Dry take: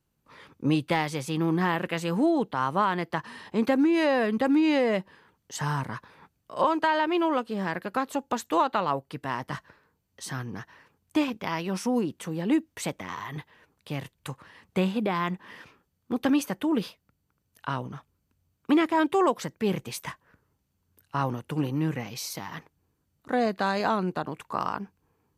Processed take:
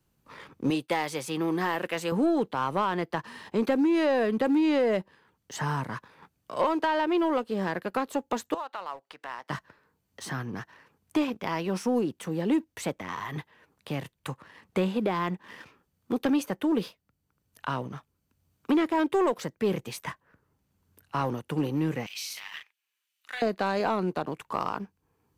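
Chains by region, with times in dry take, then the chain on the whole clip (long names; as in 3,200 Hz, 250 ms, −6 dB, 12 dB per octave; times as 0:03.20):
0:00.70–0:02.12: downward expander −41 dBFS + high-pass filter 370 Hz 6 dB per octave + high-shelf EQ 3,600 Hz +6 dB
0:08.54–0:09.50: downward compressor 2 to 1, threshold −38 dBFS + high-pass filter 650 Hz + high-frequency loss of the air 55 metres
0:22.06–0:23.42: high-pass with resonance 2,700 Hz, resonance Q 2.2 + double-tracking delay 39 ms −6 dB
whole clip: dynamic equaliser 450 Hz, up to +5 dB, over −36 dBFS, Q 1.1; leveller curve on the samples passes 1; multiband upward and downward compressor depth 40%; level −6 dB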